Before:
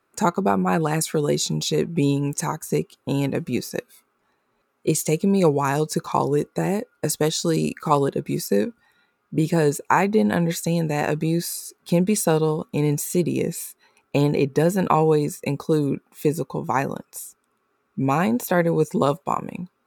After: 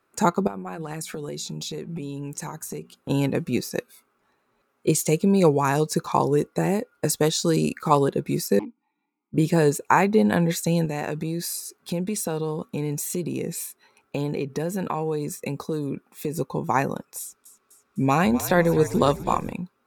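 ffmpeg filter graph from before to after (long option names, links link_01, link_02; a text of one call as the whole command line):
ffmpeg -i in.wav -filter_complex "[0:a]asettb=1/sr,asplit=3[link_01][link_02][link_03];[link_01]atrim=end=0.474[link_04];[link_02]atrim=start=0.47:end=3.1,asetpts=PTS-STARTPTS,afade=type=in:duration=0.004:curve=qsin,afade=type=out:start_time=2.626:duration=0.004:curve=qsin,acompressor=threshold=-28dB:ratio=16:attack=3.2:release=140:knee=1:detection=peak,bandreject=frequency=60:width_type=h:width=6,bandreject=frequency=120:width_type=h:width=6,bandreject=frequency=180:width_type=h:width=6,bandreject=frequency=240:width_type=h:width=6[link_05];[link_03]atrim=start=3.096[link_06];[link_04][link_05]acrossfade=duration=0.004:curve1=hsin:curve2=qsin[link_07];[link_07][link_06]acrossfade=duration=0.004:curve1=qsin:curve2=hsin,asettb=1/sr,asplit=3[link_08][link_09][link_10];[link_08]atrim=end=8.594[link_11];[link_09]atrim=start=8.59:end=9.34,asetpts=PTS-STARTPTS,afade=type=in:duration=0.004:curve=qsin,afade=type=out:start_time=0.746:duration=0.004:curve=qsin,lowshelf=frequency=130:width_type=q:width=3:gain=-7.5,aeval=exprs='0.119*(abs(mod(val(0)/0.119+3,4)-2)-1)':channel_layout=same,asplit=3[link_12][link_13][link_14];[link_12]bandpass=frequency=300:width_type=q:width=8,volume=0dB[link_15];[link_13]bandpass=frequency=870:width_type=q:width=8,volume=-6dB[link_16];[link_14]bandpass=frequency=2240:width_type=q:width=8,volume=-9dB[link_17];[link_15][link_16][link_17]amix=inputs=3:normalize=0[link_18];[link_10]atrim=start=9.336[link_19];[link_11][link_18]acrossfade=duration=0.004:curve1=hsin:curve2=qsin[link_20];[link_20][link_19]acrossfade=duration=0.004:curve1=qsin:curve2=hsin,asettb=1/sr,asplit=3[link_21][link_22][link_23];[link_21]atrim=end=10.854[link_24];[link_22]atrim=start=10.85:end=16.39,asetpts=PTS-STARTPTS,afade=type=in:duration=0.004:curve=qsin,afade=type=out:start_time=5.536:duration=0.004:curve=qsin,acompressor=threshold=-25dB:ratio=3:attack=3.2:release=140:knee=1:detection=peak,highpass=49[link_25];[link_23]atrim=start=16.386[link_26];[link_24][link_25]acrossfade=duration=0.004:curve1=hsin:curve2=qsin[link_27];[link_27][link_26]acrossfade=duration=0.004:curve1=qsin:curve2=hsin,asettb=1/sr,asplit=3[link_28][link_29][link_30];[link_28]atrim=end=17.204[link_31];[link_29]atrim=start=17.2:end=19.53,asetpts=PTS-STARTPTS,afade=type=in:duration=0.004:curve=qsin,afade=type=out:start_time=2.326:duration=0.004:curve=qsin,equalizer=frequency=4500:width=0.8:gain=4.5,asplit=7[link_32][link_33][link_34][link_35][link_36][link_37][link_38];[link_33]adelay=252,afreqshift=-56,volume=-14dB[link_39];[link_34]adelay=504,afreqshift=-112,volume=-18.7dB[link_40];[link_35]adelay=756,afreqshift=-168,volume=-23.5dB[link_41];[link_36]adelay=1008,afreqshift=-224,volume=-28.2dB[link_42];[link_37]adelay=1260,afreqshift=-280,volume=-32.9dB[link_43];[link_38]adelay=1512,afreqshift=-336,volume=-37.7dB[link_44];[link_32][link_39][link_40][link_41][link_42][link_43][link_44]amix=inputs=7:normalize=0,atrim=end_sample=102753[link_45];[link_30]atrim=start=19.526[link_46];[link_31][link_45]acrossfade=duration=0.004:curve1=hsin:curve2=qsin[link_47];[link_47][link_46]acrossfade=duration=0.004:curve1=qsin:curve2=hsin" out.wav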